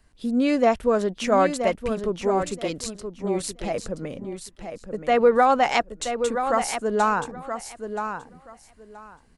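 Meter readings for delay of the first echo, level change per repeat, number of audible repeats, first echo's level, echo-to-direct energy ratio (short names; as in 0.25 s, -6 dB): 0.976 s, -15.0 dB, 2, -8.0 dB, -8.0 dB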